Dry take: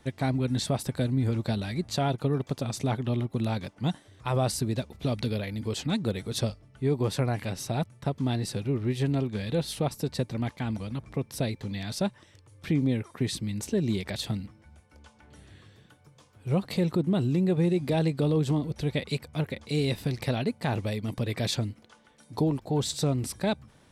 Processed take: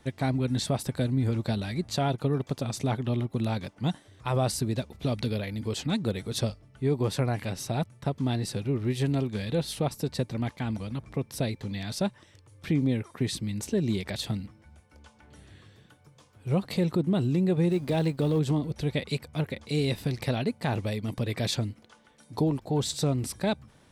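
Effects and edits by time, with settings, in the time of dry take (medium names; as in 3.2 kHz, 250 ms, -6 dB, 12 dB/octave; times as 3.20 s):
8.79–9.45 s: treble shelf 4.7 kHz +4.5 dB
17.70–18.39 s: companding laws mixed up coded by A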